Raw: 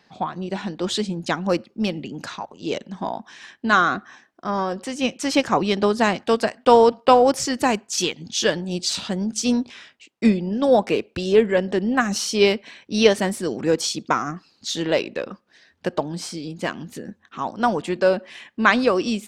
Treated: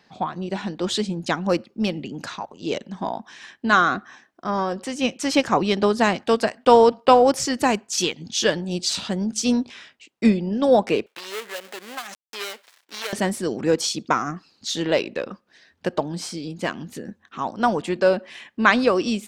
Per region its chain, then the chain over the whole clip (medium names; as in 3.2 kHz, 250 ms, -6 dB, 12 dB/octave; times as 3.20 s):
11.06–13.13 s: dead-time distortion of 0.22 ms + high-pass 870 Hz + compression 2:1, threshold -32 dBFS
whole clip: none